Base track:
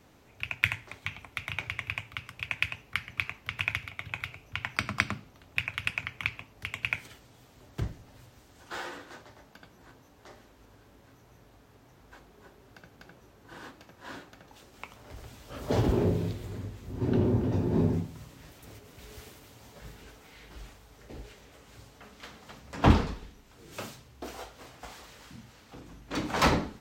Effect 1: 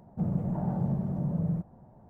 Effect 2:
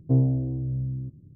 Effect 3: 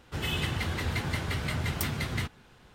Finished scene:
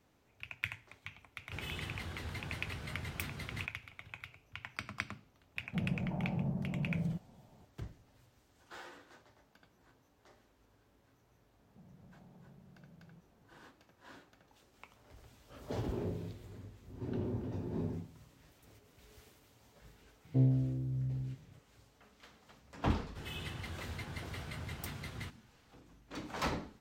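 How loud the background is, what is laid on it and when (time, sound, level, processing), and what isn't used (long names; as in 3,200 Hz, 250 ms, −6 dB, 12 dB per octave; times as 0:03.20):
base track −12 dB
0:01.39: mix in 3 −12 dB
0:05.56: mix in 1 −6.5 dB
0:11.59: mix in 1 −16.5 dB + downward compressor, threshold −40 dBFS
0:20.25: mix in 2 −9 dB + double-tracking delay 38 ms −13 dB
0:23.03: mix in 3 −12.5 dB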